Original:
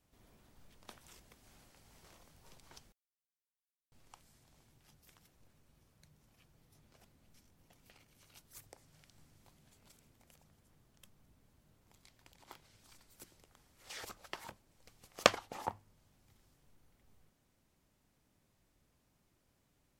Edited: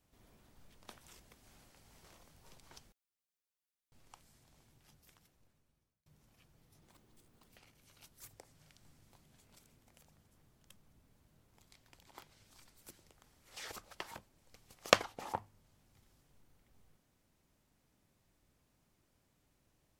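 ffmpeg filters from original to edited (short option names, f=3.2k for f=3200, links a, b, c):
-filter_complex "[0:a]asplit=4[a][b][c][d];[a]atrim=end=6.06,asetpts=PTS-STARTPTS,afade=t=out:st=4.94:d=1.12[e];[b]atrim=start=6.06:end=6.814,asetpts=PTS-STARTPTS,afade=t=in:d=0.004:c=hsin[f];[c]atrim=start=6.81:end=7.83,asetpts=PTS-STARTPTS,asetrate=65268,aresample=44100,atrim=end_sample=30393,asetpts=PTS-STARTPTS[g];[d]atrim=start=7.826[h];[e][f]concat=n=2:v=0:a=1[i];[i][g]acrossfade=d=0.004:c1=hsin:c2=hsin[j];[j][h]acrossfade=d=0.004:c1=hsin:c2=hsin"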